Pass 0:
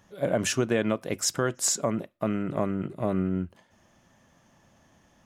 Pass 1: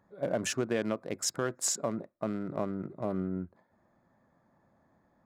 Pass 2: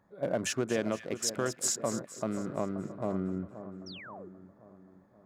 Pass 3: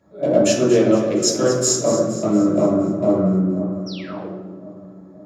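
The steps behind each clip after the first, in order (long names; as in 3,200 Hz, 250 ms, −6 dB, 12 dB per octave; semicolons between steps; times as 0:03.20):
adaptive Wiener filter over 15 samples; low-shelf EQ 100 Hz −9.5 dB; level −4.5 dB
echo with a time of its own for lows and highs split 1,600 Hz, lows 529 ms, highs 233 ms, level −12 dB; sound drawn into the spectrogram fall, 0:03.86–0:04.29, 310–6,000 Hz −47 dBFS
hollow resonant body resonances 320/580/1,300 Hz, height 7 dB; convolution reverb RT60 1.2 s, pre-delay 3 ms, DRR −6.5 dB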